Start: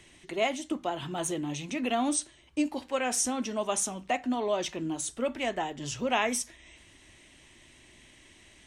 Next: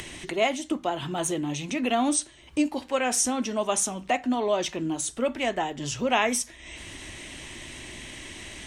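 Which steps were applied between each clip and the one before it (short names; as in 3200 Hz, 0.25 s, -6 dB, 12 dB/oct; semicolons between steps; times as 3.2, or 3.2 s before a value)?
upward compressor, threshold -33 dBFS; gain +4 dB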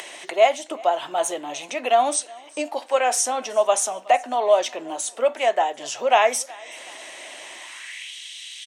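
high-pass sweep 630 Hz -> 3400 Hz, 7.54–8.14; feedback echo 0.371 s, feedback 42%, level -24 dB; gain +2 dB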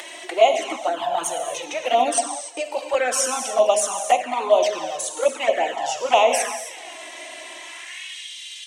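non-linear reverb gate 0.32 s flat, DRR 4 dB; envelope flanger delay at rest 3.7 ms, full sweep at -13 dBFS; gain +3 dB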